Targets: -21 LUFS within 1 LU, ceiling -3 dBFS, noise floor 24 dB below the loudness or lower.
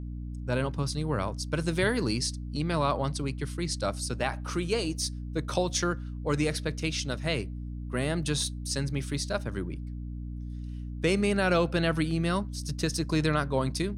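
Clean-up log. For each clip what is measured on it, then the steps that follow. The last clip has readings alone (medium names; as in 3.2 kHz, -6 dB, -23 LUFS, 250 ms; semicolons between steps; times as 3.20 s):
hum 60 Hz; highest harmonic 300 Hz; hum level -34 dBFS; loudness -30.0 LUFS; peak level -12.5 dBFS; loudness target -21.0 LUFS
-> hum notches 60/120/180/240/300 Hz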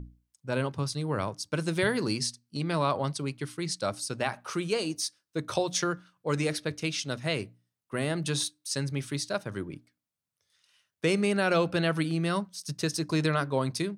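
hum not found; loudness -30.0 LUFS; peak level -12.5 dBFS; loudness target -21.0 LUFS
-> trim +9 dB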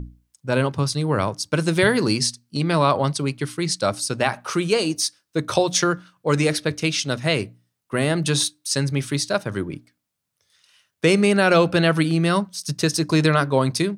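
loudness -21.0 LUFS; peak level -3.5 dBFS; noise floor -78 dBFS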